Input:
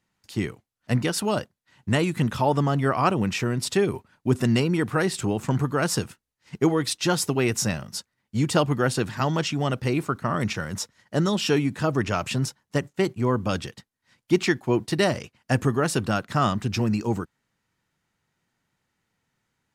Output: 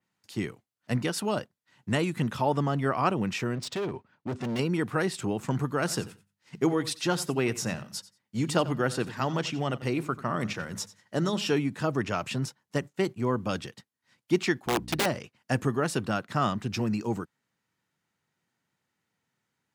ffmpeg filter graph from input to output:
-filter_complex "[0:a]asettb=1/sr,asplit=3[a][b][c];[a]atrim=end=3.554[d];[b]atrim=start=3.55:end=4.59,asetpts=PTS-STARTPTS,afade=t=in:d=0.004:c=qsin,afade=t=out:st=1.036:d=0.004:c=qsin,lowpass=8.9k,adynamicsmooth=sensitivity=4:basefreq=4.7k,asoftclip=type=hard:threshold=-24dB[e];[c]atrim=start=4.586[f];[d][e]acrossfade=d=0.004:c1=hsin:c2=qsin[g];[g][f]acrossfade=d=0.004:c1=qsin:c2=hsin,asettb=1/sr,asplit=3[h][i][j];[h]atrim=end=5.784[k];[i]atrim=start=5.78:end=11.52,asetpts=PTS-STARTPTS,afade=t=in:d=0.004:c=qsin,afade=t=out:st=5.736:d=0.004:c=qsin,bandreject=f=50:t=h:w=6,bandreject=f=100:t=h:w=6,bandreject=f=150:t=h:w=6,bandreject=f=200:t=h:w=6,aecho=1:1:90|180:0.141|0.024,atrim=end_sample=253134[l];[j]atrim=start=11.516[m];[k][l]acrossfade=d=0.004:c1=hsin:c2=qsin[n];[n][m]acrossfade=d=0.004:c1=qsin:c2=hsin,asettb=1/sr,asplit=3[o][p][q];[o]atrim=end=14.664[r];[p]atrim=start=14.66:end=15.06,asetpts=PTS-STARTPTS,afade=t=in:d=0.004:c=qsin,afade=t=out:st=0.396:d=0.004:c=qsin,aeval=exprs='val(0)+0.0224*(sin(2*PI*60*n/s)+sin(2*PI*2*60*n/s)/2+sin(2*PI*3*60*n/s)/3+sin(2*PI*4*60*n/s)/4+sin(2*PI*5*60*n/s)/5)':c=same,aeval=exprs='(mod(5.62*val(0)+1,2)-1)/5.62':c=same[s];[q]atrim=start=15.056[t];[r][s]acrossfade=d=0.004:c1=hsin:c2=qsin[u];[u][t]acrossfade=d=0.004:c1=qsin:c2=hsin,highpass=110,adynamicequalizer=threshold=0.01:dfrequency=4300:dqfactor=0.7:tfrequency=4300:tqfactor=0.7:attack=5:release=100:ratio=0.375:range=2.5:mode=cutabove:tftype=highshelf,volume=-4dB"

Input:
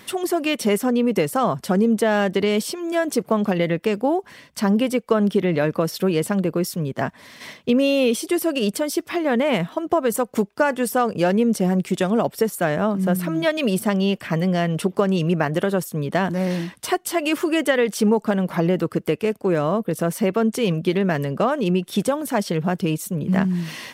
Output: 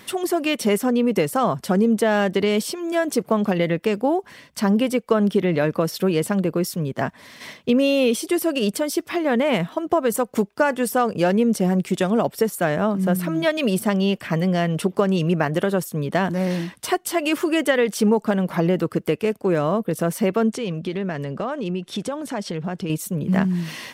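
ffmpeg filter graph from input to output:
-filter_complex "[0:a]asettb=1/sr,asplit=3[a][b][c];[a]atrim=end=20.544[d];[b]atrim=start=20.54:end=22.9,asetpts=PTS-STARTPTS,afade=t=in:d=0.004:c=qsin,afade=t=out:st=2.356:d=0.004:c=qsin,lowpass=7.6k,acompressor=threshold=-27dB:ratio=2:attack=3.2:release=140:knee=1:detection=peak[e];[c]atrim=start=22.896[f];[d][e]acrossfade=d=0.004:c1=hsin:c2=qsin[g];[g][f]acrossfade=d=0.004:c1=qsin:c2=hsin"

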